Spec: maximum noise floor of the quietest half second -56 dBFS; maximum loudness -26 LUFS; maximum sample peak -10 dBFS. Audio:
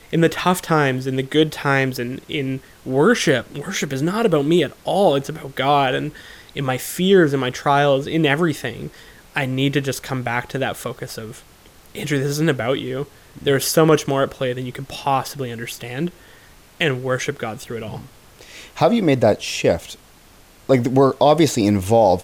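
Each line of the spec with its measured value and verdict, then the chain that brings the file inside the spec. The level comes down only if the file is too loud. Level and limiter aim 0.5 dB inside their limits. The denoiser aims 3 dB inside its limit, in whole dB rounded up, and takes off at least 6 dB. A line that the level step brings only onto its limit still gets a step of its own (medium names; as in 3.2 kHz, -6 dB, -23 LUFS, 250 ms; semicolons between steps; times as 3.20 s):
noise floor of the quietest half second -48 dBFS: fail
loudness -19.5 LUFS: fail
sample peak -4.0 dBFS: fail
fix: noise reduction 6 dB, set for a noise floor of -48 dBFS; trim -7 dB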